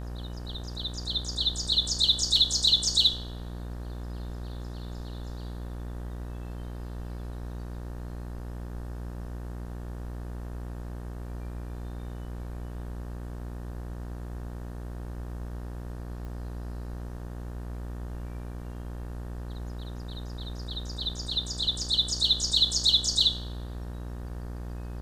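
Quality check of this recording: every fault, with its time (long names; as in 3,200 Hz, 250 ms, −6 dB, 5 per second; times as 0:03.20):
mains buzz 60 Hz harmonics 31 −37 dBFS
0:16.25: click −31 dBFS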